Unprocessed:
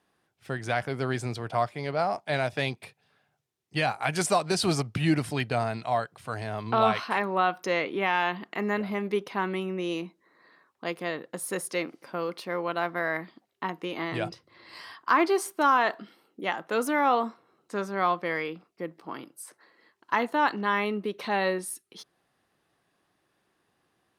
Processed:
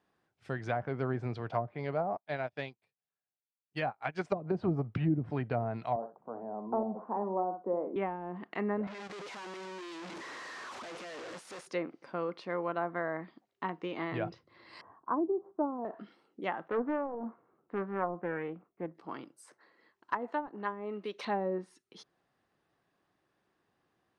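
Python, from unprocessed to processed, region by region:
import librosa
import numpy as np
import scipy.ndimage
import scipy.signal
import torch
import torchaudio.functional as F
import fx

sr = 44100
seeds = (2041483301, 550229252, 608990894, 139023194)

y = fx.chain(x, sr, fx.low_shelf(hz=120.0, db=-7.0),
    fx.upward_expand(threshold_db=-42.0, expansion=2.5), at=(2.17, 4.32))
y = fx.chain(y, sr, fx.cheby1_bandpass(low_hz=200.0, high_hz=920.0, order=3),
    fx.echo_feedback(ms=62, feedback_pct=15, wet_db=-11.0), at=(5.96, 7.96))
y = fx.chain(y, sr, fx.clip_1bit(),
    fx.highpass(hz=520.0, slope=6),
    fx.level_steps(step_db=13), at=(8.87, 11.67))
y = fx.chain(y, sr, fx.lowpass(hz=1000.0, slope=24),
    fx.low_shelf(hz=220.0, db=3.0), at=(14.81, 15.85))
y = fx.chain(y, sr, fx.gaussian_blur(sigma=3.9),
    fx.doppler_dist(depth_ms=0.34), at=(16.68, 18.95))
y = fx.chain(y, sr, fx.riaa(side='recording'),
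    fx.overload_stage(gain_db=14.0), at=(20.13, 21.25))
y = fx.env_lowpass_down(y, sr, base_hz=320.0, full_db=-20.0)
y = scipy.signal.sosfilt(scipy.signal.butter(2, 6200.0, 'lowpass', fs=sr, output='sos'), y)
y = fx.peak_eq(y, sr, hz=3600.0, db=-4.0, octaves=1.7)
y = F.gain(torch.from_numpy(y), -3.5).numpy()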